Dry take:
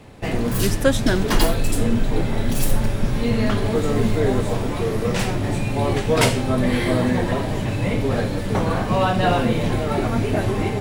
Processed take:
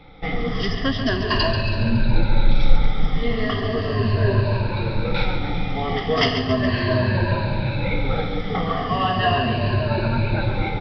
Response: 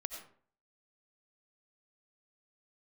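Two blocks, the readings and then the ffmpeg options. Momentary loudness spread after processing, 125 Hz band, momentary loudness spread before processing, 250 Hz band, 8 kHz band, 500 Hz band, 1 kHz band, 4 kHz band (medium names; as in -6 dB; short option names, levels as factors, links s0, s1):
6 LU, +0.5 dB, 5 LU, -3.5 dB, under -20 dB, -3.0 dB, +0.5 dB, +2.5 dB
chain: -filter_complex "[0:a]afftfilt=real='re*pow(10,17/40*sin(2*PI*(1.4*log(max(b,1)*sr/1024/100)/log(2)-(-0.37)*(pts-256)/sr)))':imag='im*pow(10,17/40*sin(2*PI*(1.4*log(max(b,1)*sr/1024/100)/log(2)-(-0.37)*(pts-256)/sr)))':win_size=1024:overlap=0.75,asplit=2[s0][s1];[s1]aecho=0:1:139|278|417|556|695|834|973:0.376|0.21|0.118|0.066|0.037|0.0207|0.0116[s2];[s0][s2]amix=inputs=2:normalize=0,aresample=11025,aresample=44100,equalizer=f=320:t=o:w=2.1:g=-6,volume=0.794"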